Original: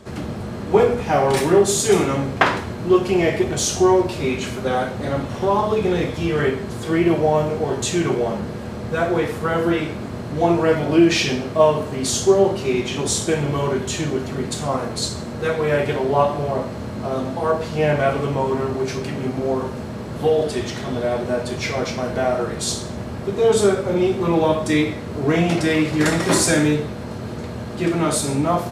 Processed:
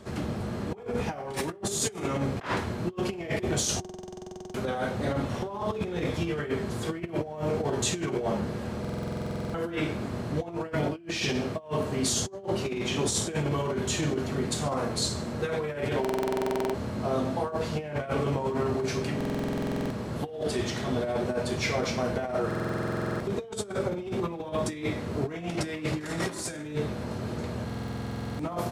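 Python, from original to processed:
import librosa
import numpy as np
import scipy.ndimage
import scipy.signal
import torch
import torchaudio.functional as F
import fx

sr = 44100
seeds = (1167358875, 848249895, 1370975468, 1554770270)

y = fx.over_compress(x, sr, threshold_db=-22.0, ratio=-0.5)
y = fx.buffer_glitch(y, sr, at_s=(3.8, 8.8, 16.0, 19.16, 22.46, 27.65), block=2048, repeats=15)
y = y * librosa.db_to_amplitude(-7.0)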